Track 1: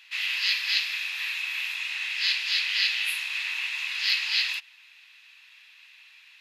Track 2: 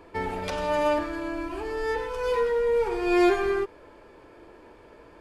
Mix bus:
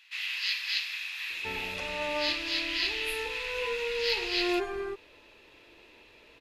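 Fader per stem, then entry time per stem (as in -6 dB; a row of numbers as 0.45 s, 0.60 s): -5.5 dB, -9.5 dB; 0.00 s, 1.30 s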